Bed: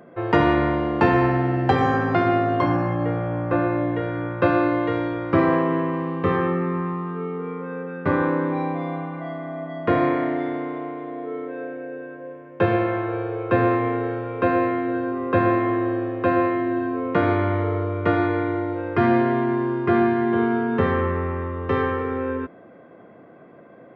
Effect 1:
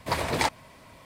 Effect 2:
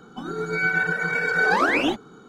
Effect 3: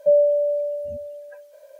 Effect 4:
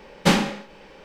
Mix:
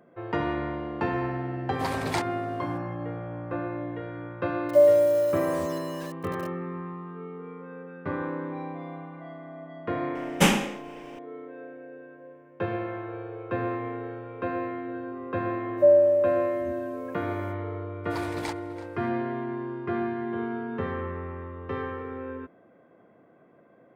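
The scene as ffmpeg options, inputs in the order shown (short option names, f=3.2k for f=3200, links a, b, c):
-filter_complex "[1:a]asplit=2[a][b];[3:a]asplit=2[c][d];[0:a]volume=-10.5dB[e];[c]acrusher=bits=6:mix=0:aa=0.000001[f];[4:a]aexciter=amount=1.1:drive=4.8:freq=2.3k[g];[d]bandreject=f=1.4k:w=12[h];[b]asplit=2[i][j];[j]adelay=332.4,volume=-14dB,highshelf=f=4k:g=-7.48[k];[i][k]amix=inputs=2:normalize=0[l];[a]atrim=end=1.05,asetpts=PTS-STARTPTS,volume=-6dB,afade=t=in:d=0.004:c=hsin,afade=t=out:st=1.046:d=0.004:c=hsin,adelay=1730[m];[f]atrim=end=1.79,asetpts=PTS-STARTPTS,volume=-1dB,afade=t=in:d=0.004:c=hsin,afade=t=out:st=1.786:d=0.004:c=hsin,adelay=206829S[n];[g]atrim=end=1.04,asetpts=PTS-STARTPTS,volume=-2.5dB,afade=t=in:d=0.004:c=hsin,afade=t=out:st=1.036:d=0.004:c=hsin,adelay=10150[o];[h]atrim=end=1.79,asetpts=PTS-STARTPTS,volume=-1dB,afade=t=in:d=0.05,afade=t=out:st=1.74:d=0.05,adelay=15760[p];[l]atrim=end=1.05,asetpts=PTS-STARTPTS,volume=-11dB,afade=t=in:d=0.004:c=hsin,afade=t=out:st=1.046:d=0.004:c=hsin,adelay=18040[q];[e][m][n][o][p][q]amix=inputs=6:normalize=0"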